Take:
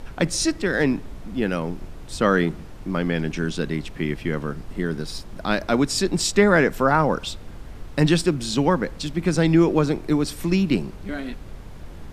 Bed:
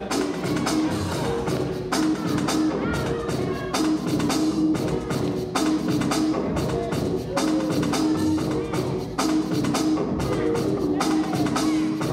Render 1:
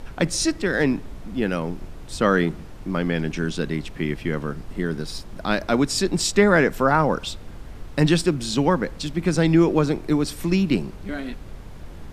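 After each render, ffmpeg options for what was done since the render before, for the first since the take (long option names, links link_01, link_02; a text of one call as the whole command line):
ffmpeg -i in.wav -af anull out.wav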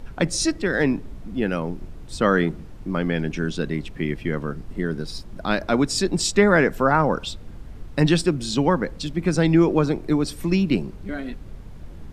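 ffmpeg -i in.wav -af "afftdn=noise_reduction=6:noise_floor=-39" out.wav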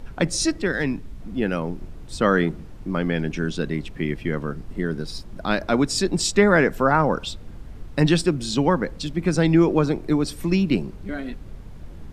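ffmpeg -i in.wav -filter_complex "[0:a]asettb=1/sr,asplit=3[link_01][link_02][link_03];[link_01]atrim=end=0.724[link_04];[link_02]atrim=start=0.72:end=1.2,asetpts=PTS-STARTPTS,afade=type=in:duration=0.004:curve=qsin,afade=type=out:start_time=0.476:duration=0.004:curve=qsin,equalizer=frequency=530:width=0.52:gain=-6.5[link_05];[link_03]atrim=start=1.196[link_06];[link_04][link_05]acrossfade=duration=0.004:curve1=hsin:curve2=qsin[link_07];[link_07][link_06]acrossfade=duration=0.004:curve1=qsin:curve2=hsin" out.wav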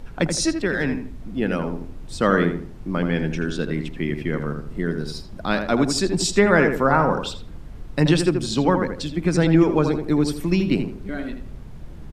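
ffmpeg -i in.wav -filter_complex "[0:a]asplit=2[link_01][link_02];[link_02]adelay=81,lowpass=frequency=1900:poles=1,volume=-6dB,asplit=2[link_03][link_04];[link_04]adelay=81,lowpass=frequency=1900:poles=1,volume=0.34,asplit=2[link_05][link_06];[link_06]adelay=81,lowpass=frequency=1900:poles=1,volume=0.34,asplit=2[link_07][link_08];[link_08]adelay=81,lowpass=frequency=1900:poles=1,volume=0.34[link_09];[link_01][link_03][link_05][link_07][link_09]amix=inputs=5:normalize=0" out.wav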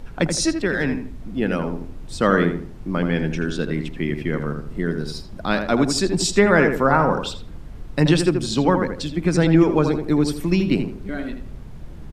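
ffmpeg -i in.wav -af "volume=1dB,alimiter=limit=-3dB:level=0:latency=1" out.wav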